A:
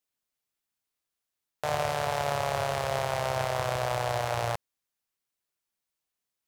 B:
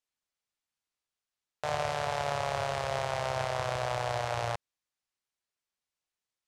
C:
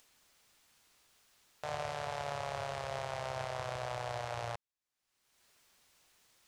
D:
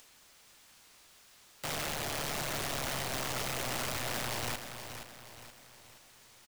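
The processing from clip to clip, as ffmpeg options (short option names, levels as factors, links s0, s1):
-af "lowpass=8000,equalizer=f=250:t=o:w=1.8:g=-3,volume=0.794"
-af "acompressor=mode=upward:threshold=0.0126:ratio=2.5,volume=0.447"
-af "aeval=exprs='(mod(84.1*val(0)+1,2)-1)/84.1':c=same,aecho=1:1:473|946|1419|1892|2365:0.355|0.16|0.0718|0.0323|0.0145,volume=2.66"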